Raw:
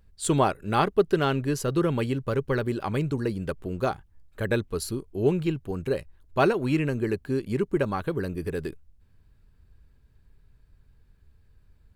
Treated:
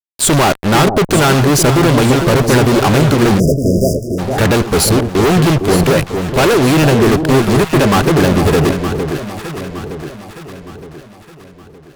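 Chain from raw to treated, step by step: fuzz box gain 45 dB, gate -40 dBFS; echo whose repeats swap between lows and highs 458 ms, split 820 Hz, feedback 66%, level -6 dB; spectral selection erased 3.40–4.18 s, 690–4800 Hz; trim +4 dB

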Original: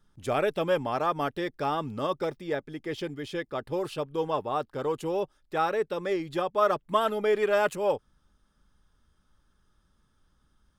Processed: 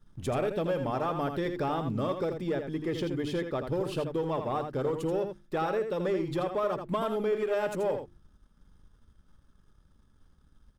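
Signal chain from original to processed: bass shelf 440 Hz +10 dB; hum notches 50/100/150/200/250/300/350 Hz; compression 4:1, threshold -27 dBFS, peak gain reduction 10 dB; waveshaping leveller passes 1; delay 82 ms -7.5 dB; trim -3.5 dB

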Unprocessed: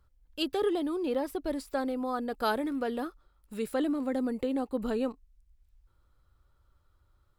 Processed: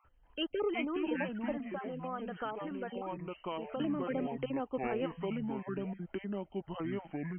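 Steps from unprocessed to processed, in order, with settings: random holes in the spectrogram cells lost 28%; ever faster or slower copies 233 ms, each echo -5 st, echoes 2; 1.58–3.80 s: compression, threshold -34 dBFS, peak gain reduction 10.5 dB; brick-wall FIR low-pass 3.2 kHz; bass shelf 410 Hz -8.5 dB; three bands compressed up and down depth 40%

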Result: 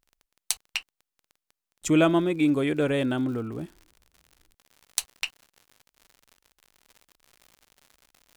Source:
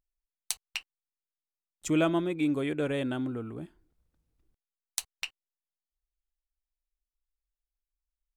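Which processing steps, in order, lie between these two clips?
crackle 14 per s -46 dBFS, from 1.95 s 120 per s; trim +5.5 dB

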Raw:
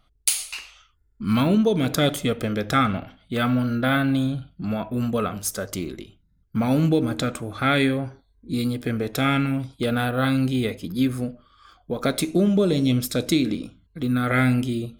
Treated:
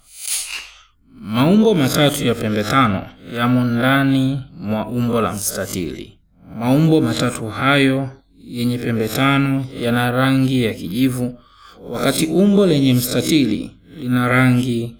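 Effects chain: reverse spectral sustain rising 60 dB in 0.31 s; 10.94–12.09 s: treble shelf 11 kHz -> 5.5 kHz +7 dB; attacks held to a fixed rise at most 120 dB/s; trim +6 dB

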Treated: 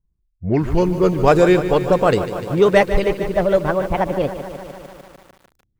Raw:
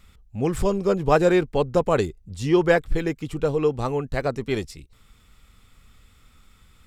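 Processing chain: gliding tape speed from 79% -> 158%; level-controlled noise filter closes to 300 Hz, open at -14 dBFS; spectral noise reduction 22 dB; in parallel at -10.5 dB: hard clipper -19.5 dBFS, distortion -8 dB; on the sum: bit-crushed delay 149 ms, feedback 80%, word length 7-bit, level -12 dB; trim +3.5 dB

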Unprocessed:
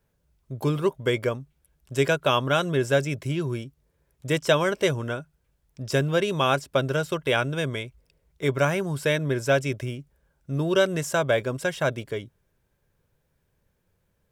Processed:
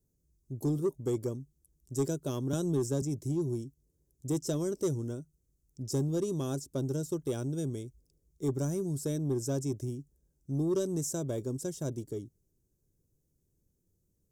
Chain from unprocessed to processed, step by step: FFT filter 210 Hz 0 dB, 330 Hz +5 dB, 560 Hz -11 dB, 950 Hz -17 dB, 1.8 kHz -24 dB, 2.6 kHz -25 dB, 6.5 kHz +5 dB, 10 kHz +2 dB; saturation -17.5 dBFS, distortion -19 dB; 2.53–3.02 s: three bands compressed up and down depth 70%; trim -4.5 dB

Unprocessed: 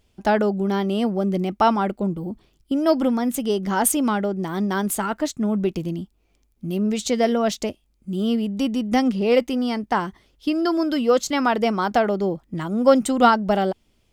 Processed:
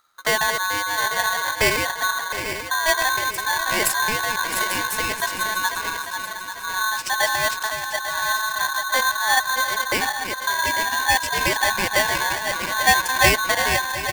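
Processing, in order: backward echo that repeats 422 ms, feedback 65%, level -7 dB; delay 714 ms -14 dB; polarity switched at an audio rate 1.3 kHz; trim -2 dB

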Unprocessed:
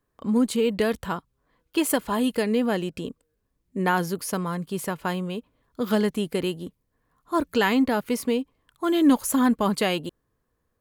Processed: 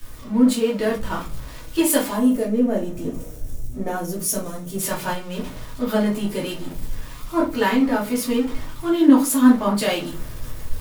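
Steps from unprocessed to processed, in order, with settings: jump at every zero crossing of -29.5 dBFS; time-frequency box 2.17–4.80 s, 750–5400 Hz -9 dB; in parallel at +2.5 dB: gain riding within 4 dB 0.5 s; on the sum: simulated room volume 170 m³, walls furnished, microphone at 2.7 m; three bands expanded up and down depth 70%; trim -12.5 dB

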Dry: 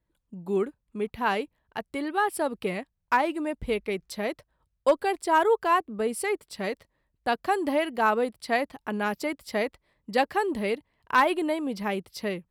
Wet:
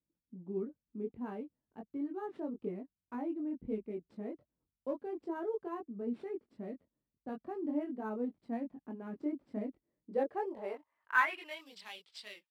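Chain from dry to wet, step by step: chorus voices 4, 0.33 Hz, delay 22 ms, depth 1.7 ms; sample-rate reducer 13 kHz, jitter 0%; band-pass sweep 250 Hz -> 3.5 kHz, 9.87–11.67 s

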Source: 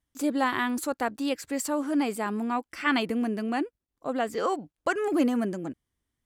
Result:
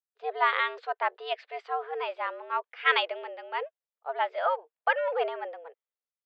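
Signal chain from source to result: mistuned SSB +160 Hz 360–3600 Hz; three bands expanded up and down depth 70%

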